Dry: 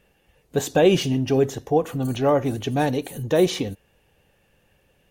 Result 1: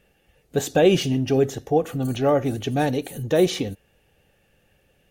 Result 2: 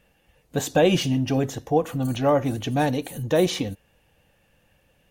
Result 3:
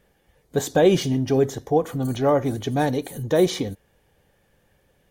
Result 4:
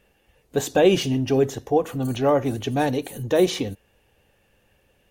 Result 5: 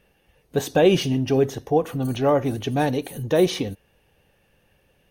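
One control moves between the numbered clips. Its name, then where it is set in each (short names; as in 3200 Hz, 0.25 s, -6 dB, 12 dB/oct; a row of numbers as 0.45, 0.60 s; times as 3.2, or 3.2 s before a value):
notch, frequency: 1000, 400, 2700, 160, 7300 Hz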